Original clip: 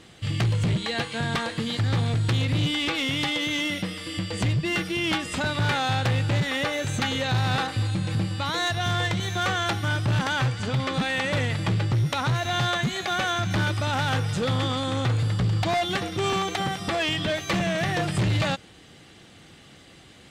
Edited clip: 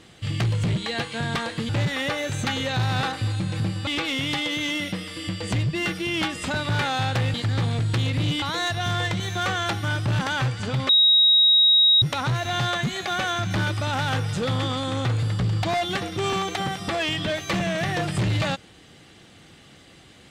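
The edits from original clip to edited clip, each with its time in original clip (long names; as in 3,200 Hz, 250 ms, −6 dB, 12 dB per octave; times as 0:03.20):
0:01.69–0:02.77: swap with 0:06.24–0:08.42
0:10.89–0:12.02: beep over 3,800 Hz −13 dBFS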